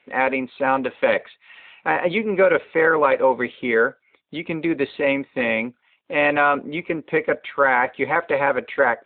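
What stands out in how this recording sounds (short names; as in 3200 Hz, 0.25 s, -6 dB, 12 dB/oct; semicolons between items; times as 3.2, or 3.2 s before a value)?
a quantiser's noise floor 12-bit, dither none; AMR-NB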